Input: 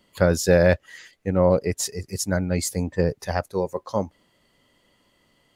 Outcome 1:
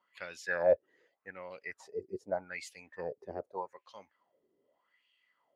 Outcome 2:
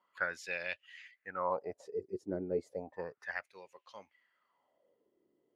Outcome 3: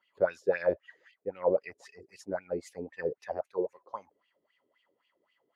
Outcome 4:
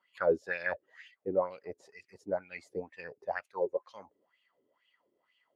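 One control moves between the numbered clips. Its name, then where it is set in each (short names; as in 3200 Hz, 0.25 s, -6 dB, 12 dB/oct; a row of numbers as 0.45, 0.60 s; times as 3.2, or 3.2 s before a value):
wah, rate: 0.83, 0.33, 3.8, 2.1 Hz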